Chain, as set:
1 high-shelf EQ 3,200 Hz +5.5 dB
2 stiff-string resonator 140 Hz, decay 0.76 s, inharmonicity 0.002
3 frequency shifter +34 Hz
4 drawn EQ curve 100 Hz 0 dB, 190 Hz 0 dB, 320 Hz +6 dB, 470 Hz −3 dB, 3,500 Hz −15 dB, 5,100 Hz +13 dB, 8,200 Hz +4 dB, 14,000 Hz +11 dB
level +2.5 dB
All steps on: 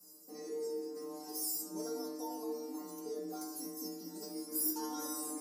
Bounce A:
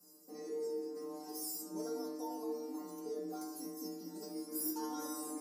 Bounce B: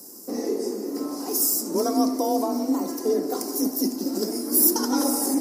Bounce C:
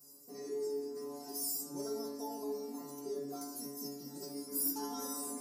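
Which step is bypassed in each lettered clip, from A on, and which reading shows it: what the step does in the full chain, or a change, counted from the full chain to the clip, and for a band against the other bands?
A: 1, change in crest factor −2.5 dB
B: 2, 250 Hz band +3.0 dB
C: 3, 125 Hz band +3.5 dB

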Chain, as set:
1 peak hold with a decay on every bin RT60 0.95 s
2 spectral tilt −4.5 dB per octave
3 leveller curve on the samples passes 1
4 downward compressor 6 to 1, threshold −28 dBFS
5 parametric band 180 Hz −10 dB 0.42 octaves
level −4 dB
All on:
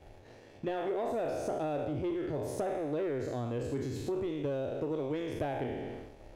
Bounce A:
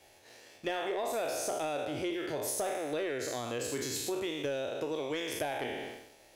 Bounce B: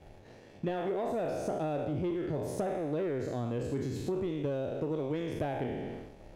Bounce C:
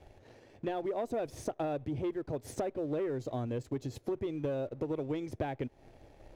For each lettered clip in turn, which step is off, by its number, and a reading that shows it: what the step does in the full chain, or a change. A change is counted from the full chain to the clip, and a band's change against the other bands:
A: 2, 8 kHz band +15.0 dB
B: 5, 125 Hz band +2.5 dB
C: 1, 2 kHz band −2.0 dB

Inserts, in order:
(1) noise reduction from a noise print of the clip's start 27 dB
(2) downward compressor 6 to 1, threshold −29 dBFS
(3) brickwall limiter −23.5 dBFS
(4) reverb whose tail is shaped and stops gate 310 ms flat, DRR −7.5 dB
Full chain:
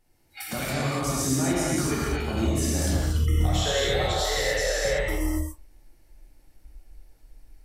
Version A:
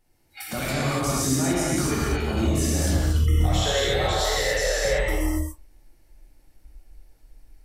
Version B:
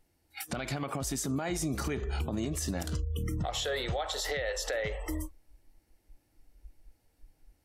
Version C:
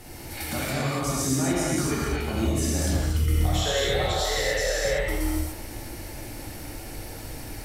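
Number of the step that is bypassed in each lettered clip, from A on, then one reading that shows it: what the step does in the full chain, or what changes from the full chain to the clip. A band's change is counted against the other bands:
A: 2, average gain reduction 10.0 dB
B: 4, change in crest factor −3.0 dB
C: 1, change in momentary loudness spread +8 LU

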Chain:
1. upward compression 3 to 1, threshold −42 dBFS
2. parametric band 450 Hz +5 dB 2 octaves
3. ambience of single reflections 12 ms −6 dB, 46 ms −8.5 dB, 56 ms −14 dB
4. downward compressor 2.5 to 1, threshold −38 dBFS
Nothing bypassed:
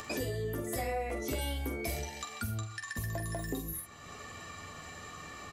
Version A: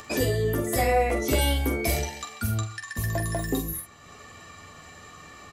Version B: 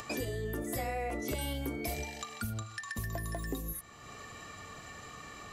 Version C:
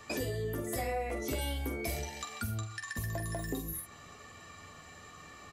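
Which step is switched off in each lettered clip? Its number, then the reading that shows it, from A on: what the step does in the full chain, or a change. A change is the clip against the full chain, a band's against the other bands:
4, average gain reduction 6.0 dB
3, 250 Hz band +1.5 dB
1, change in momentary loudness spread +5 LU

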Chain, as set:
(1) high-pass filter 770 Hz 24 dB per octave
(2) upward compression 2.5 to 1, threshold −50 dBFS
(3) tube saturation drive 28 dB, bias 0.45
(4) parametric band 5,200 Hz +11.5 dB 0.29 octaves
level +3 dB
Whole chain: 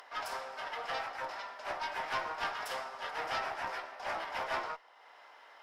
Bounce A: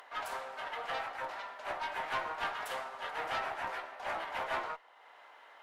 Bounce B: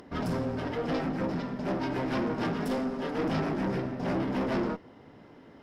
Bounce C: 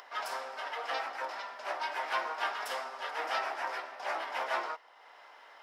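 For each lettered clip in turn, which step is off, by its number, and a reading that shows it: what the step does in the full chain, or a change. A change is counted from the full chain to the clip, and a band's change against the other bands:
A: 4, 8 kHz band −2.0 dB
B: 1, 250 Hz band +28.5 dB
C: 3, 250 Hz band −3.0 dB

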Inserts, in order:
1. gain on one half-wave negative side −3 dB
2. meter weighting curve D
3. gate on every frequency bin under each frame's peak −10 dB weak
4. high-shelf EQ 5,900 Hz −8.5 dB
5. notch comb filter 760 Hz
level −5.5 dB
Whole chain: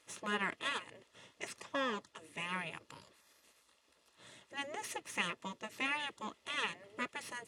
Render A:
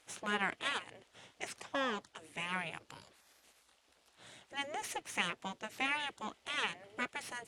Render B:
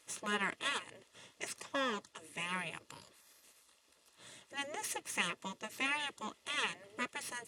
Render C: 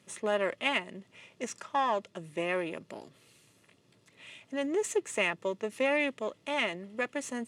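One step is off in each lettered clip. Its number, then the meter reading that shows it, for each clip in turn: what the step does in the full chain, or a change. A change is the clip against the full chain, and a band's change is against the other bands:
5, change in integrated loudness +1.0 LU
4, 8 kHz band +5.5 dB
3, 500 Hz band +8.5 dB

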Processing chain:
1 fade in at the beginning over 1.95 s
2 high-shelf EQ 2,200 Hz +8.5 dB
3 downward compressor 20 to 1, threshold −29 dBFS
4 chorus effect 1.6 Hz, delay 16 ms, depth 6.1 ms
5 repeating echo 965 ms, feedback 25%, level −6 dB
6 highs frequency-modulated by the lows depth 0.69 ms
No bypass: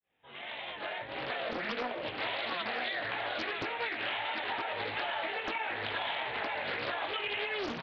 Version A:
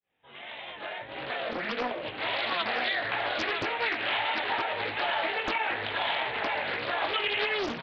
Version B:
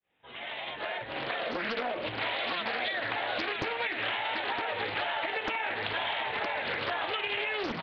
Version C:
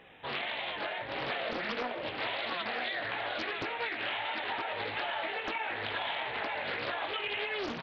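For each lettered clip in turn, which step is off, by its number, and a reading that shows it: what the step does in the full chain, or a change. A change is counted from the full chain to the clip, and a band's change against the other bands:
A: 3, average gain reduction 4.0 dB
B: 4, change in integrated loudness +3.0 LU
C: 1, change in momentary loudness spread −3 LU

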